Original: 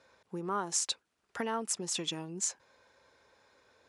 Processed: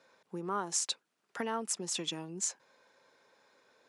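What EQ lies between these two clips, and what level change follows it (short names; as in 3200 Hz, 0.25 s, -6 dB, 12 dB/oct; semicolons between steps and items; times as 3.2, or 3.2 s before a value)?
HPF 140 Hz 24 dB/oct; -1.0 dB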